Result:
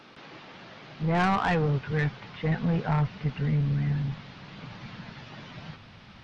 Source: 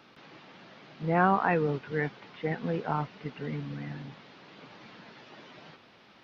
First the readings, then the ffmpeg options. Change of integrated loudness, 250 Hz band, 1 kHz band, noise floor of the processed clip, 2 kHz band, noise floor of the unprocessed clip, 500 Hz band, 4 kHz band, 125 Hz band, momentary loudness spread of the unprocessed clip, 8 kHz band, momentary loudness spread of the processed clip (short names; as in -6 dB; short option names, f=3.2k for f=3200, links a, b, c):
+3.0 dB, +4.0 dB, -0.5 dB, -50 dBFS, +1.0 dB, -57 dBFS, -1.5 dB, +7.0 dB, +9.0 dB, 25 LU, n/a, 21 LU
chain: -af "asubboost=boost=11.5:cutoff=110,asoftclip=type=tanh:threshold=-25dB,aresample=22050,aresample=44100,volume=5.5dB"